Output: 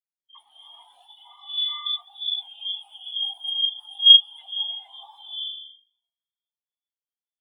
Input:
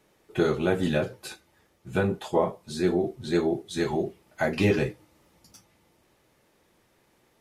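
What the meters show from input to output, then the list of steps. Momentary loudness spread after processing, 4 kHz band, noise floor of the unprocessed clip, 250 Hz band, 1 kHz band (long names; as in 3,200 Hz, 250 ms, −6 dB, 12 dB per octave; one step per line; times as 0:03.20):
21 LU, +24.0 dB, −66 dBFS, below −40 dB, below −10 dB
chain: in parallel at −3 dB: hard clipping −25.5 dBFS, distortion −7 dB
on the sum: tuned comb filter 50 Hz, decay 0.68 s, harmonics all, mix 30%
voice inversion scrambler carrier 3,600 Hz
on a send: flutter between parallel walls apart 7 metres, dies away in 1 s
on the sum: noise that follows the level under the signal 11 dB
low-shelf EQ 120 Hz −5 dB
wrap-around overflow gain 18.5 dB
downward compressor 10 to 1, threshold −38 dBFS, peak gain reduction 16 dB
parametric band 810 Hz +11.5 dB 0.87 octaves
reverb whose tail is shaped and stops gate 490 ms rising, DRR −2.5 dB
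boost into a limiter +26 dB
every bin expanded away from the loudest bin 4 to 1
level −1 dB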